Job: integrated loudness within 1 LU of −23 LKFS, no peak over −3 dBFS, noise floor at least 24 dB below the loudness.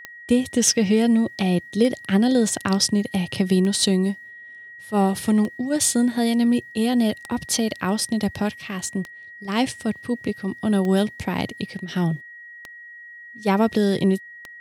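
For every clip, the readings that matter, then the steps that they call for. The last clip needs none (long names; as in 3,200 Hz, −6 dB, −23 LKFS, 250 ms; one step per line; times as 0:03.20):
number of clicks 9; interfering tone 1,900 Hz; level of the tone −39 dBFS; integrated loudness −22.0 LKFS; sample peak −4.5 dBFS; target loudness −23.0 LKFS
→ click removal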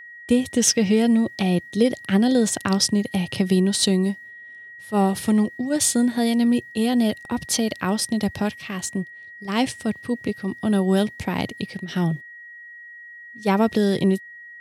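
number of clicks 0; interfering tone 1,900 Hz; level of the tone −39 dBFS
→ notch filter 1,900 Hz, Q 30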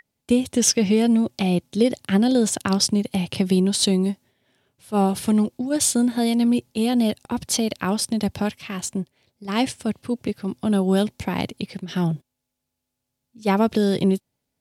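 interfering tone none found; integrated loudness −22.0 LKFS; sample peak −4.5 dBFS; target loudness −23.0 LKFS
→ level −1 dB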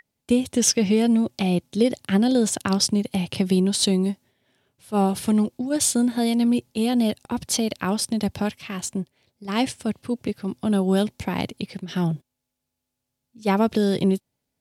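integrated loudness −23.0 LKFS; sample peak −5.5 dBFS; background noise floor −82 dBFS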